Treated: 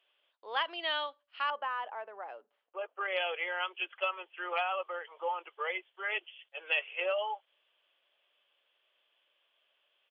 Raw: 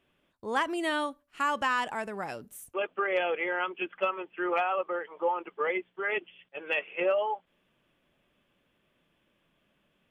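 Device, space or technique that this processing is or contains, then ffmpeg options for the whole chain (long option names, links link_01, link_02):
musical greeting card: -filter_complex "[0:a]asettb=1/sr,asplit=3[link_01][link_02][link_03];[link_01]atrim=end=1.504[link_04];[link_02]atrim=start=1.5:end=3.01,asetpts=PTS-STARTPTS,afade=type=in:duration=0.004:curve=qsin,afade=type=out:start_time=1.506:duration=0.004:curve=qsin,lowpass=1200[link_05];[link_03]atrim=start=3.006[link_06];[link_04][link_05]acrossfade=duration=0.004:curve1=hsin:curve2=qsin[link_07];[link_07][link_06]acrossfade=duration=0.004:curve1=qsin:curve2=hsin,aresample=11025,aresample=44100,highpass=frequency=520:width=0.5412,highpass=frequency=520:width=1.3066,equalizer=frequency=3100:width_type=o:width=0.47:gain=10,volume=-4.5dB"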